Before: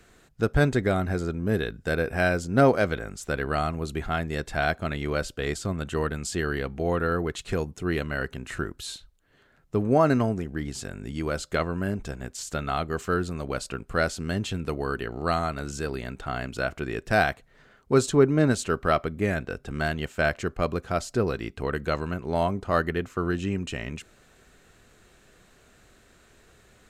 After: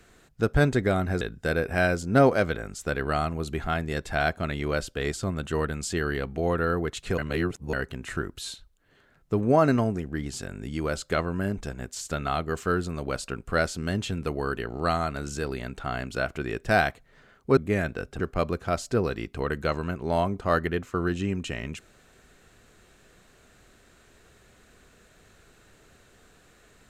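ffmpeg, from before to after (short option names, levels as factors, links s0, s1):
-filter_complex "[0:a]asplit=6[s0][s1][s2][s3][s4][s5];[s0]atrim=end=1.212[s6];[s1]atrim=start=1.628:end=7.602[s7];[s2]atrim=start=7.598:end=8.152,asetpts=PTS-STARTPTS,areverse[s8];[s3]atrim=start=8.148:end=17.992[s9];[s4]atrim=start=19.088:end=19.722[s10];[s5]atrim=start=20.428[s11];[s6][s7]acrossfade=d=0.004:c1=hsin:c2=hsin[s12];[s12][s8]acrossfade=d=0.004:c1=hsin:c2=hsin[s13];[s13][s9]acrossfade=d=0.004:c1=hsin:c2=hsin[s14];[s14][s10]acrossfade=d=0.004:c1=hsin:c2=hsin[s15];[s15][s11]acrossfade=d=0.004:c1=hsin:c2=hsin"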